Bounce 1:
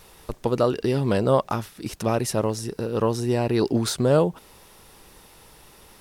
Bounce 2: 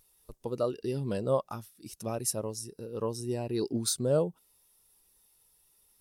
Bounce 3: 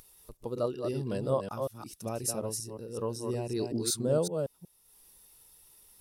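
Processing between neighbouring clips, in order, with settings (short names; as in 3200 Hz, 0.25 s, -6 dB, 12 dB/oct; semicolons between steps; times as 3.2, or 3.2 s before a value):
pre-emphasis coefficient 0.8; spectral expander 1.5:1
reverse delay 0.186 s, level -5 dB; upward compressor, threshold -47 dBFS; gain -1.5 dB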